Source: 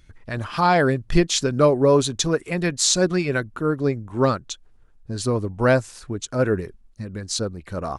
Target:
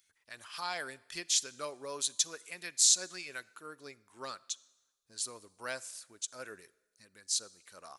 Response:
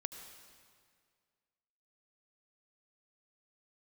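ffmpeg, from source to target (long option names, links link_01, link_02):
-filter_complex "[0:a]aderivative,asplit=2[link_01][link_02];[1:a]atrim=start_sample=2205,asetrate=79380,aresample=44100,lowshelf=frequency=180:gain=-10[link_03];[link_02][link_03]afir=irnorm=-1:irlink=0,volume=-6.5dB[link_04];[link_01][link_04]amix=inputs=2:normalize=0,volume=-4.5dB"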